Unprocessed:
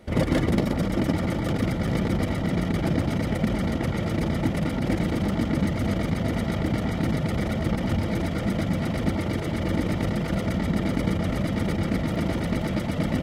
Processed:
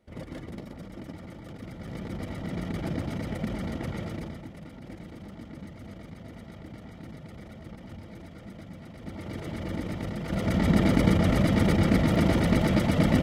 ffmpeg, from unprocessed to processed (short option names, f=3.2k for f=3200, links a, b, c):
-af "volume=14dB,afade=t=in:st=1.6:d=1.12:silence=0.316228,afade=t=out:st=3.99:d=0.46:silence=0.281838,afade=t=in:st=8.99:d=0.47:silence=0.298538,afade=t=in:st=10.22:d=0.5:silence=0.281838"